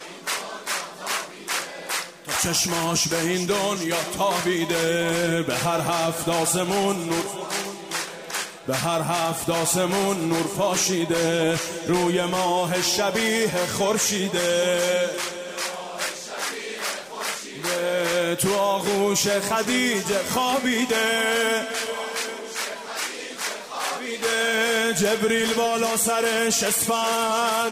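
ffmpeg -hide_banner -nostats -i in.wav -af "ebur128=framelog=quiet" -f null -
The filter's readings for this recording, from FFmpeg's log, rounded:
Integrated loudness:
  I:         -23.1 LUFS
  Threshold: -33.1 LUFS
Loudness range:
  LRA:         3.9 LU
  Threshold: -43.1 LUFS
  LRA low:   -25.3 LUFS
  LRA high:  -21.5 LUFS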